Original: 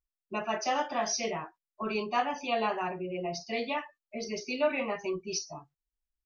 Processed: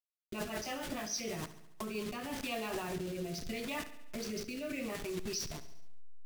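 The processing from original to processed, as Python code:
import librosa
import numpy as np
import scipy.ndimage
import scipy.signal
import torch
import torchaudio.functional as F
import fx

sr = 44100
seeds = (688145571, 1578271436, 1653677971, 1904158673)

p1 = fx.delta_hold(x, sr, step_db=-38.0)
p2 = fx.peak_eq(p1, sr, hz=820.0, db=-8.5, octaves=1.7)
p3 = fx.over_compress(p2, sr, threshold_db=-41.0, ratio=-0.5)
p4 = p2 + (p3 * 10.0 ** (3.0 / 20.0))
p5 = fx.rotary_switch(p4, sr, hz=6.7, then_hz=0.75, switch_at_s=1.49)
p6 = fx.echo_feedback(p5, sr, ms=70, feedback_pct=59, wet_db=-14.5)
y = p6 * 10.0 ** (-4.5 / 20.0)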